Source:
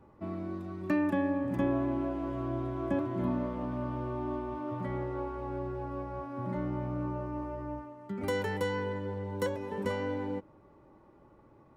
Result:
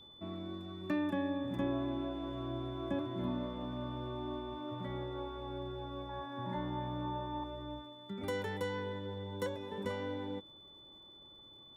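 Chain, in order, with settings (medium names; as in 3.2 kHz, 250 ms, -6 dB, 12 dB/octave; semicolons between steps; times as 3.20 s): 6.09–7.44 s: small resonant body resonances 950/1700 Hz, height 17 dB, ringing for 45 ms; crackle 250 per s -62 dBFS; whistle 3.5 kHz -49 dBFS; trim -5.5 dB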